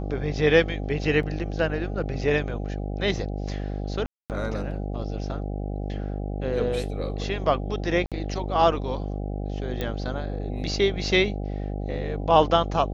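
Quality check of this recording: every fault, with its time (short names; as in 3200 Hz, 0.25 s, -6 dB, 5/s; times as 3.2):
buzz 50 Hz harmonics 16 -30 dBFS
1.23 gap 2.4 ms
4.06–4.3 gap 0.238 s
8.06–8.12 gap 57 ms
9.81 pop -15 dBFS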